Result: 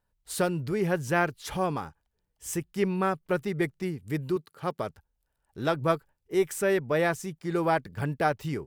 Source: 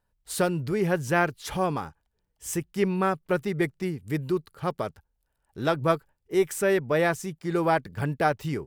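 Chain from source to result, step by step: 4.36–4.79 HPF 150 Hz; gain -2 dB

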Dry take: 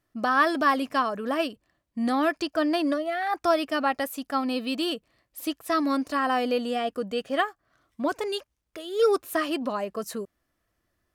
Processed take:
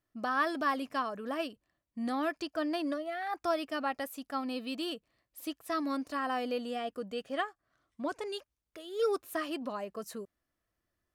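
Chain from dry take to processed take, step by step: 7.33–8.35 LPF 11000 Hz 24 dB/oct; gain -8.5 dB

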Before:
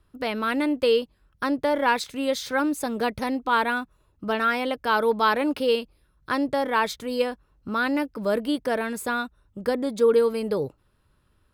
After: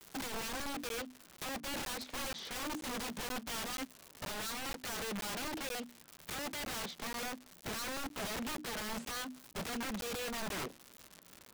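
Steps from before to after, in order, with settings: block floating point 3-bit; rippled Chebyshev high-pass 160 Hz, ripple 3 dB; soft clip -21.5 dBFS, distortion -11 dB; air absorption 110 m; crackle 230/s -39 dBFS; compressor 6:1, threshold -42 dBFS, peak gain reduction 16.5 dB; notches 60/120/180/240/300/360 Hz; vibrato 1.1 Hz 98 cents; wrapped overs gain 42 dB; low shelf 400 Hz +4 dB; crackling interface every 0.48 s, samples 512, zero, from 0.89; gain +6 dB

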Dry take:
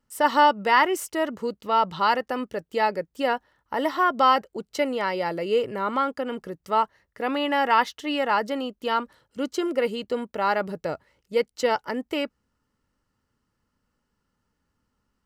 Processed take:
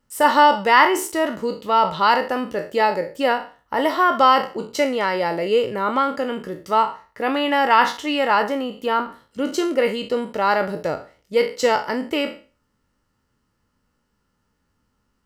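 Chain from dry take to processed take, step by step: spectral trails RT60 0.36 s; 8.42–9.54 dynamic EQ 4900 Hz, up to -8 dB, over -46 dBFS, Q 0.79; gain +4 dB

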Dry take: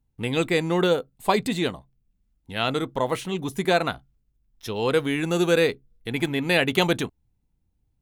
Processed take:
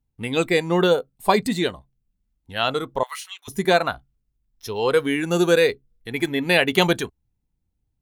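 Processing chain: 3.03–3.48 HPF 1300 Hz 24 dB/oct; spectral noise reduction 7 dB; gain +3.5 dB

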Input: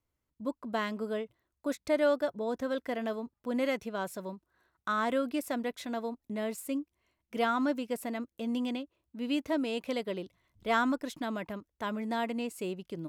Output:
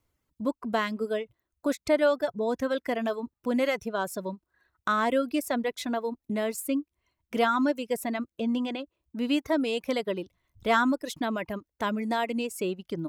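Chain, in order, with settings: reverb removal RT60 1.1 s; 8.37–8.79 high shelf 5300 Hz -11.5 dB; in parallel at -2 dB: compressor, threshold -38 dBFS, peak gain reduction 14.5 dB; on the sum: gain +3.5 dB

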